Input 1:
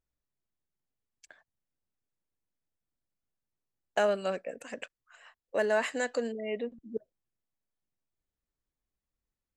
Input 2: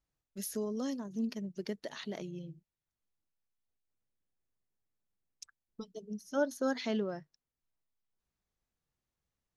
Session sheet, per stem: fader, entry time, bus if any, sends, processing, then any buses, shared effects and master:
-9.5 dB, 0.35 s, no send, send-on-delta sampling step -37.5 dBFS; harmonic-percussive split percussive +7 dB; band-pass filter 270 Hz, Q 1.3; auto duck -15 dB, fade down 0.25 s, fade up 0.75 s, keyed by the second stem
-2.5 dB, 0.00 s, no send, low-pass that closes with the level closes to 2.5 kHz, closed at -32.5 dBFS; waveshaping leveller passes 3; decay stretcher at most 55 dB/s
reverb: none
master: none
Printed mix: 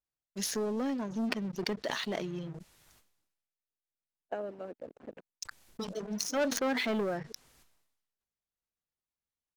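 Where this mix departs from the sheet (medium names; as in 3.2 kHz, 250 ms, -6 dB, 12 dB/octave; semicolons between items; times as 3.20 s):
stem 1 -9.5 dB -> -2.5 dB; master: extra bass shelf 350 Hz -6 dB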